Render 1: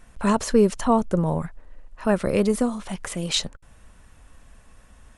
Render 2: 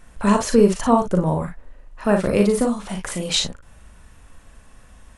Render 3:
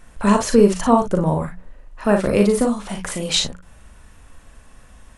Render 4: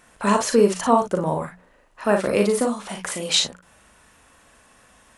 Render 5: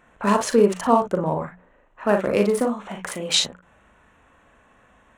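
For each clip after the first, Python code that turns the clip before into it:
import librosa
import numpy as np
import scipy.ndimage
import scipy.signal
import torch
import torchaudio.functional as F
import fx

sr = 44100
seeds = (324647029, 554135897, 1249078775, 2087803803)

y1 = fx.room_early_taps(x, sr, ms=(39, 55), db=(-5.5, -8.5))
y1 = y1 * librosa.db_to_amplitude(2.0)
y2 = fx.hum_notches(y1, sr, base_hz=60, count=3)
y2 = y2 * librosa.db_to_amplitude(1.5)
y3 = fx.highpass(y2, sr, hz=370.0, slope=6)
y4 = fx.wiener(y3, sr, points=9)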